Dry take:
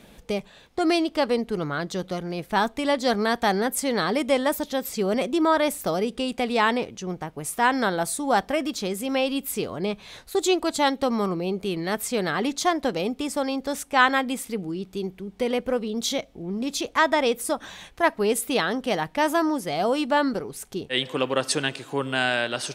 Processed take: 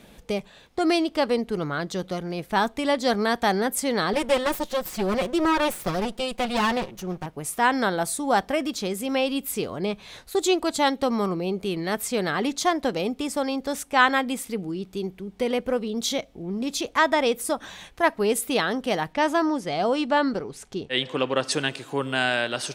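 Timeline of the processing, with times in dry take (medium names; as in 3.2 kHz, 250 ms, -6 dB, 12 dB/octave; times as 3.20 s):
4.13–7.26 s: comb filter that takes the minimum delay 5.5 ms
19.13–21.52 s: low-pass 7 kHz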